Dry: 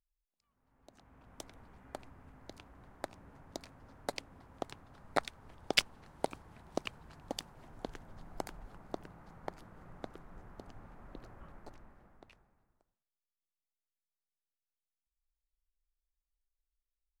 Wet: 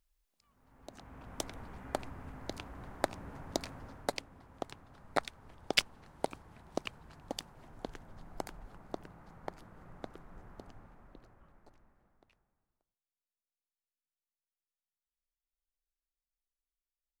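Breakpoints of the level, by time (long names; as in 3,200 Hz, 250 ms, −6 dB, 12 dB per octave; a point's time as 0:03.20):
0:03.77 +9.5 dB
0:04.30 0 dB
0:10.61 0 dB
0:11.45 −9.5 dB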